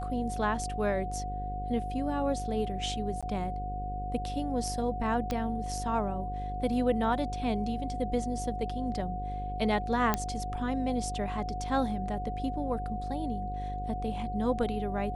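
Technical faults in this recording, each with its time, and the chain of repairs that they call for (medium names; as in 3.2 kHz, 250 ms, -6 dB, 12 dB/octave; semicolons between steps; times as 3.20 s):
buzz 50 Hz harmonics 11 -37 dBFS
whine 730 Hz -36 dBFS
3.21–3.23 s: dropout 16 ms
5.31 s: pop -18 dBFS
10.14 s: pop -11 dBFS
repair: de-click; de-hum 50 Hz, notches 11; band-stop 730 Hz, Q 30; interpolate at 3.21 s, 16 ms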